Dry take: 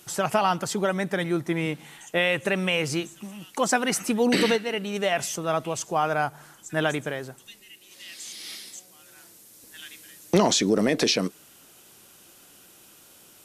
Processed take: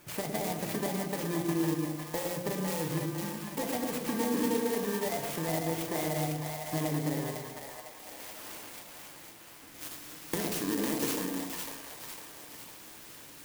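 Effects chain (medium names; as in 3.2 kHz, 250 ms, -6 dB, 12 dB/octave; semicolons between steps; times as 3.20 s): bit-reversed sample order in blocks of 32 samples; treble shelf 4.5 kHz -9 dB, from 9.81 s +2 dB; compression 5:1, threshold -32 dBFS, peak gain reduction 16.5 dB; two-band feedback delay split 610 Hz, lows 111 ms, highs 503 ms, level -4 dB; FDN reverb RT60 0.76 s, low-frequency decay 1.45×, high-frequency decay 0.95×, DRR 5 dB; sampling jitter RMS 0.065 ms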